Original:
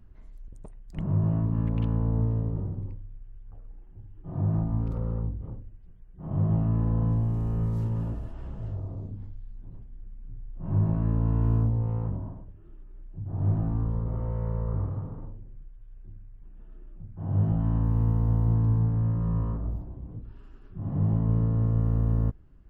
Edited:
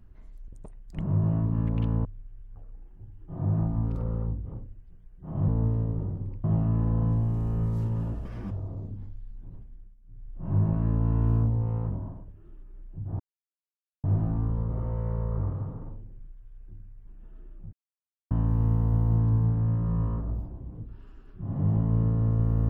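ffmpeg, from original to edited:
-filter_complex "[0:a]asplit=11[a][b][c][d][e][f][g][h][i][j][k];[a]atrim=end=2.052[l];[b]atrim=start=3.008:end=6.442[m];[c]atrim=start=2.048:end=3.012[n];[d]atrim=start=6.438:end=8.254[o];[e]atrim=start=8.25:end=8.71,asetpts=PTS-STARTPTS,asetrate=78939,aresample=44100[p];[f]atrim=start=8.706:end=10.16,asetpts=PTS-STARTPTS,afade=t=out:st=1.014:d=0.44:c=qsin:silence=0.188365[q];[g]atrim=start=10.16:end=10.24,asetpts=PTS-STARTPTS,volume=-14.5dB[r];[h]atrim=start=10.24:end=13.4,asetpts=PTS-STARTPTS,afade=t=in:d=0.44:c=qsin:silence=0.188365,afade=t=out:st=3.156:d=0.004:c=hsin,apad=pad_dur=0.84[s];[i]atrim=start=13.4:end=17.09,asetpts=PTS-STARTPTS,afade=t=in:d=0.004:c=hsin,afade=t=out:st=3.686:d=0.004:c=hsin[t];[j]atrim=start=17.09:end=17.67,asetpts=PTS-STARTPTS,volume=0[u];[k]atrim=start=17.67,asetpts=PTS-STARTPTS,afade=t=in:d=0.004:c=hsin[v];[l][m]acrossfade=d=0.004:c1=hsin:c2=hsin[w];[w][n]acrossfade=d=0.004:c1=hsin:c2=hsin[x];[x][o]acrossfade=d=0.004:c1=hsin:c2=hsin[y];[y][p]acrossfade=d=0.004:c1=hsin:c2=hsin[z];[q][r][s][t][u][v]concat=n=6:v=0:a=1[aa];[z][aa]acrossfade=d=0.004:c1=hsin:c2=hsin"

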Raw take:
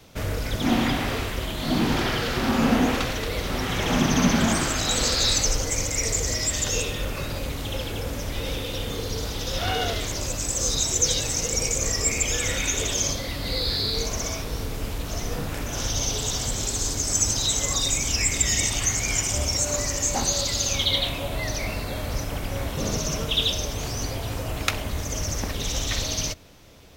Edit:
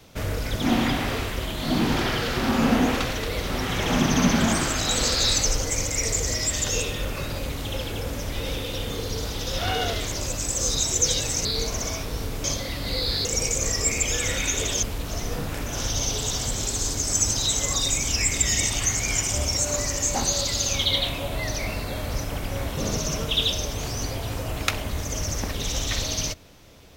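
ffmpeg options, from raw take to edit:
-filter_complex "[0:a]asplit=5[a][b][c][d][e];[a]atrim=end=11.452[f];[b]atrim=start=13.838:end=14.832[g];[c]atrim=start=13.028:end=13.842[h];[d]atrim=start=11.448:end=13.032[i];[e]atrim=start=14.828[j];[f][g]acrossfade=d=0.004:c1=hsin:c2=hsin[k];[k][h]acrossfade=d=0.004:c1=hsin:c2=hsin[l];[l][i]acrossfade=d=0.004:c1=hsin:c2=hsin[m];[m][j]acrossfade=d=0.004:c1=hsin:c2=hsin"

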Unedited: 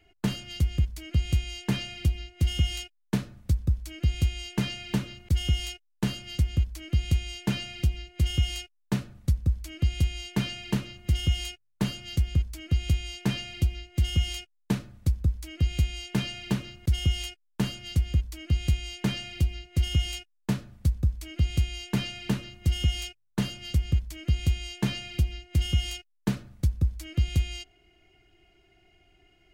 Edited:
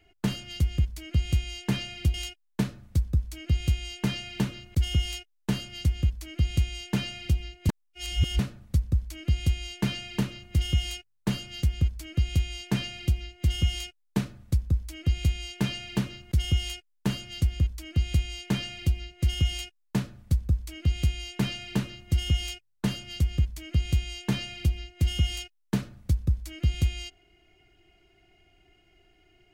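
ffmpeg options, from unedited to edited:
-filter_complex "[0:a]asplit=4[a][b][c][d];[a]atrim=end=2.142[e];[b]atrim=start=2.678:end=8.232[f];[c]atrim=start=8.228:end=8.932,asetpts=PTS-STARTPTS,areverse[g];[d]atrim=start=8.928[h];[e][f]acrossfade=d=0.004:c1=hsin:c2=hsin[i];[i][g]acrossfade=d=0.004:c1=hsin:c2=hsin[j];[j][h]acrossfade=d=0.004:c1=hsin:c2=hsin"

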